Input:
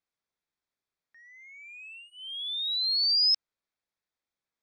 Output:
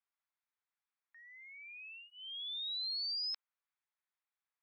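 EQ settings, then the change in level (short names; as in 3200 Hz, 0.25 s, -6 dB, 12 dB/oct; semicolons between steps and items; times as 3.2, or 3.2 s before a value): HPF 840 Hz 24 dB/oct; air absorption 340 m; 0.0 dB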